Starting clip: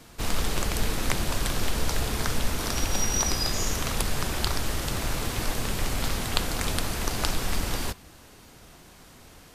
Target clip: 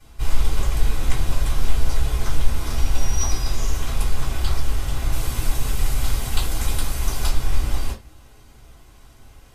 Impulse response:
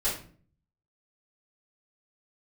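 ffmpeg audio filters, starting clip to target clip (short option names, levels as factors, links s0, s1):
-filter_complex "[0:a]asettb=1/sr,asplit=3[s0][s1][s2];[s0]atrim=end=5.124[s3];[s1]atrim=start=5.12:end=7.29,asetpts=PTS-STARTPTS,afade=t=in:d=0.004:c=qsin,afade=t=out:st=2.166:d=0.004:c=qsin,highshelf=f=5400:g=8[s4];[s2]atrim=start=7.286[s5];[s3][s4]acrossfade=d=0.004:c1=hsin:c2=qsin[s6];[s6][s5]acrossfade=d=0.004:c1=qsin:c2=hsin[s7];[1:a]atrim=start_sample=2205,afade=t=out:st=0.22:d=0.01,atrim=end_sample=10143,asetrate=79380,aresample=44100[s8];[s7][s8]afir=irnorm=-1:irlink=0,volume=0.501"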